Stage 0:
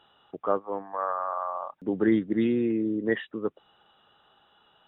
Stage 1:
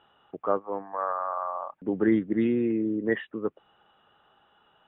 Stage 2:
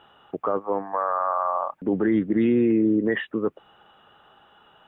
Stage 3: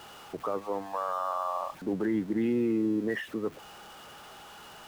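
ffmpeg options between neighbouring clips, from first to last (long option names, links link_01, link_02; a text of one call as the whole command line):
ffmpeg -i in.wav -af "lowpass=frequency=2900:width=0.5412,lowpass=frequency=2900:width=1.3066" out.wav
ffmpeg -i in.wav -af "alimiter=limit=-21dB:level=0:latency=1:release=42,volume=8dB" out.wav
ffmpeg -i in.wav -af "aeval=exprs='val(0)+0.5*0.0158*sgn(val(0))':channel_layout=same,volume=-8dB" out.wav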